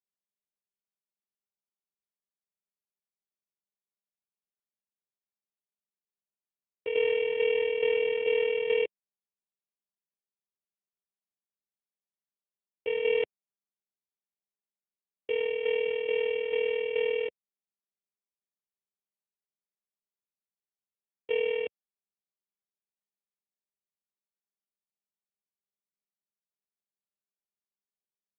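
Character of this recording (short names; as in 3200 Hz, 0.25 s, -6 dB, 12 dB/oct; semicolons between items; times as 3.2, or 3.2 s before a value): a buzz of ramps at a fixed pitch in blocks of 16 samples; tremolo saw down 2.3 Hz, depth 55%; a quantiser's noise floor 12-bit, dither none; AMR-NB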